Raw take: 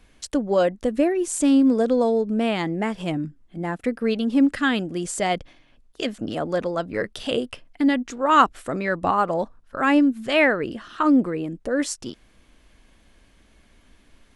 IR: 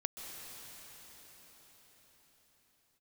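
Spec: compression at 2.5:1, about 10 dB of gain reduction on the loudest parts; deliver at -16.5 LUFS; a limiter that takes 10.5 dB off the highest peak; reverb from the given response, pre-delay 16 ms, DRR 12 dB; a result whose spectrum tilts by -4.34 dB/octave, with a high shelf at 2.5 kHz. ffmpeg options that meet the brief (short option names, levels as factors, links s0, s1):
-filter_complex "[0:a]highshelf=f=2500:g=4,acompressor=threshold=0.0562:ratio=2.5,alimiter=limit=0.0891:level=0:latency=1,asplit=2[s0][s1];[1:a]atrim=start_sample=2205,adelay=16[s2];[s1][s2]afir=irnorm=-1:irlink=0,volume=0.224[s3];[s0][s3]amix=inputs=2:normalize=0,volume=5.01"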